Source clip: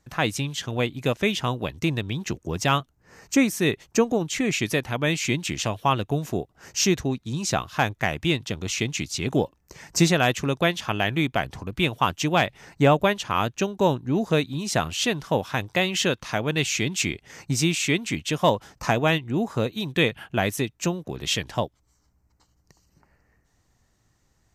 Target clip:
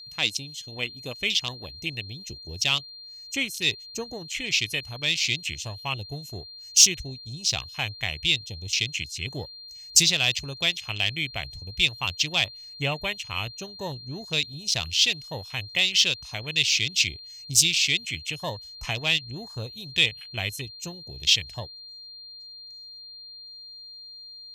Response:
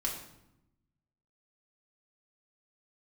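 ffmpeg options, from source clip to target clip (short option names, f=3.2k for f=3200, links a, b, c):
-af "afwtdn=0.0251,asubboost=boost=9:cutoff=75,aexciter=amount=9.3:drive=6.1:freq=2.3k,aeval=exprs='val(0)+0.0355*sin(2*PI*4200*n/s)':c=same,volume=-12dB"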